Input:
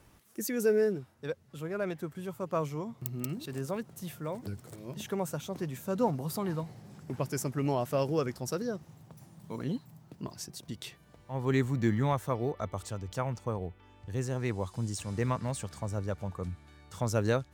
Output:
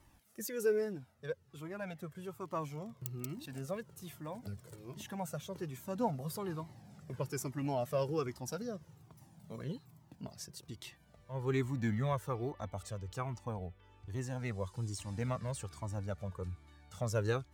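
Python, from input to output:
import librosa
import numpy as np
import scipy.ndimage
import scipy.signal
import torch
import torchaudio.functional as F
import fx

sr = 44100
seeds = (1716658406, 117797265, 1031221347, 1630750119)

y = fx.dmg_crackle(x, sr, seeds[0], per_s=39.0, level_db=-41.0, at=(2.38, 3.74), fade=0.02)
y = fx.comb_cascade(y, sr, direction='falling', hz=1.2)
y = y * librosa.db_to_amplitude(-1.0)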